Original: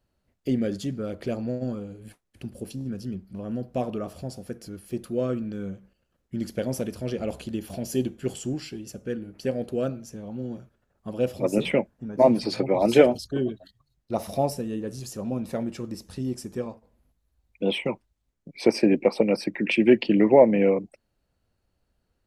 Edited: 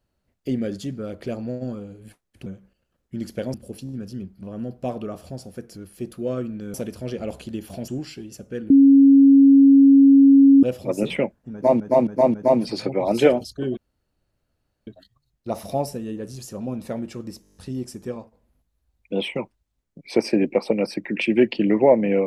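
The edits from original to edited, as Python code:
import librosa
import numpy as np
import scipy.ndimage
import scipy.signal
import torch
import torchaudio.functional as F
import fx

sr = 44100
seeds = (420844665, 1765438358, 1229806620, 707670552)

y = fx.edit(x, sr, fx.move(start_s=5.66, length_s=1.08, to_s=2.46),
    fx.cut(start_s=7.88, length_s=0.55),
    fx.bleep(start_s=9.25, length_s=1.93, hz=275.0, db=-8.0),
    fx.repeat(start_s=12.08, length_s=0.27, count=4),
    fx.insert_room_tone(at_s=13.51, length_s=1.1),
    fx.stutter(start_s=16.06, slice_s=0.02, count=8), tone=tone)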